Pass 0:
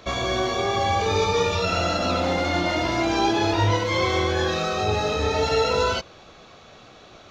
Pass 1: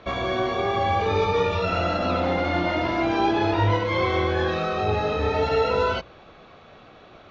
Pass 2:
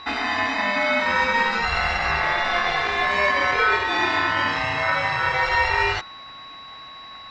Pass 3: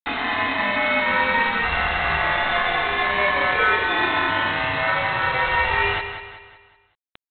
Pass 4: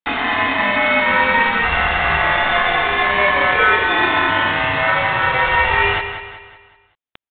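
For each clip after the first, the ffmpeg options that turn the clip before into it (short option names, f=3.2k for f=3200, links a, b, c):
-af "lowpass=2.8k,bandreject=f=60:t=h:w=6,bandreject=f=120:t=h:w=6"
-af "aeval=exprs='val(0)+0.0112*sin(2*PI*2500*n/s)':c=same,aeval=exprs='val(0)*sin(2*PI*1400*n/s)':c=same,volume=4dB"
-af "aresample=8000,acrusher=bits=4:mix=0:aa=0.000001,aresample=44100,aecho=1:1:188|376|564|752|940:0.335|0.144|0.0619|0.0266|0.0115"
-af "aresample=8000,aresample=44100,volume=5dB"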